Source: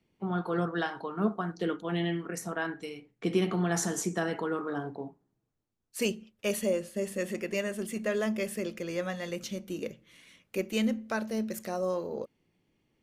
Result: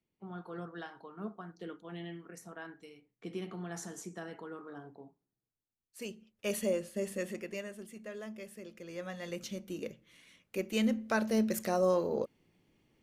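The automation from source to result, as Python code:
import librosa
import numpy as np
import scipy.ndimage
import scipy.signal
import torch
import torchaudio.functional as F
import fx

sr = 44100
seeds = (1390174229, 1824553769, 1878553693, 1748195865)

y = fx.gain(x, sr, db=fx.line((6.07, -13.0), (6.55, -3.0), (7.13, -3.0), (7.95, -14.0), (8.64, -14.0), (9.33, -4.0), (10.56, -4.0), (11.33, 3.0)))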